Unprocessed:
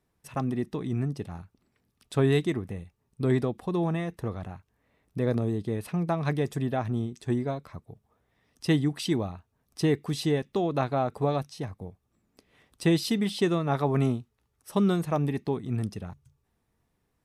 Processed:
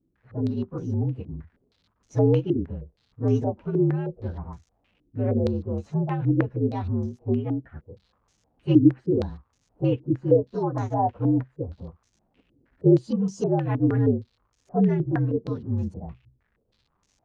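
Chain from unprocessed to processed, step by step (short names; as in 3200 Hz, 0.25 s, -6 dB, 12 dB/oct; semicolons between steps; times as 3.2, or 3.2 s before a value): inharmonic rescaling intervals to 119%; tilt shelf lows +8.5 dB; crackle 390/s -53 dBFS; stepped low-pass 6.4 Hz 310–6400 Hz; gain -4 dB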